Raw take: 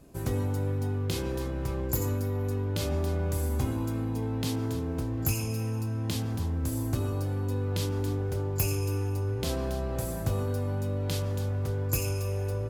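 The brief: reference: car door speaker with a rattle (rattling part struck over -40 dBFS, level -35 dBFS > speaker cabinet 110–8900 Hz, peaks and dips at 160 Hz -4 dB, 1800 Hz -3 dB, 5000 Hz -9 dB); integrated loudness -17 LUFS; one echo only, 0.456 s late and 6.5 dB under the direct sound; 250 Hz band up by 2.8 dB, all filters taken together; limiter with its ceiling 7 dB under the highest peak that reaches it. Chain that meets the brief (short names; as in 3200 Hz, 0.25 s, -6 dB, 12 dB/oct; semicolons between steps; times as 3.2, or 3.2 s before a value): bell 250 Hz +4 dB; limiter -21.5 dBFS; echo 0.456 s -6.5 dB; rattling part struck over -40 dBFS, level -35 dBFS; speaker cabinet 110–8900 Hz, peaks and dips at 160 Hz -4 dB, 1800 Hz -3 dB, 5000 Hz -9 dB; gain +15 dB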